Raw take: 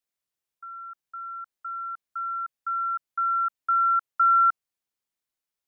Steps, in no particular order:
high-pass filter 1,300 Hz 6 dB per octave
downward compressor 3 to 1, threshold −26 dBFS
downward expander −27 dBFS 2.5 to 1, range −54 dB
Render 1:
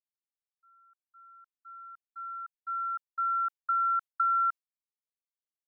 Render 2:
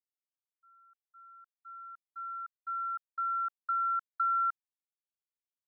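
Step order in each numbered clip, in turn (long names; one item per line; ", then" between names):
high-pass filter, then downward expander, then downward compressor
downward compressor, then high-pass filter, then downward expander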